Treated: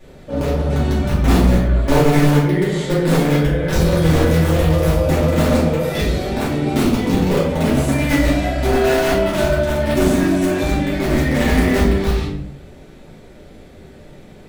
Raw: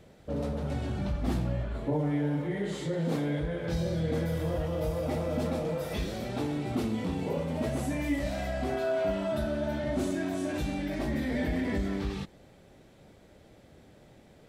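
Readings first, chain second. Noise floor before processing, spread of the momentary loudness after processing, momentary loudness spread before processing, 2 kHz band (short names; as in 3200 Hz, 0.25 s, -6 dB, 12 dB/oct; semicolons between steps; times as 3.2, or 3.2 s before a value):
-57 dBFS, 5 LU, 4 LU, +16.5 dB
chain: in parallel at -5.5 dB: bit-crush 4-bit; on the sum: vibrato 1.9 Hz 6.3 cents; notches 50/100/150/200/250/300/350 Hz; shoebox room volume 94 m³, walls mixed, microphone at 2.5 m; gain +3 dB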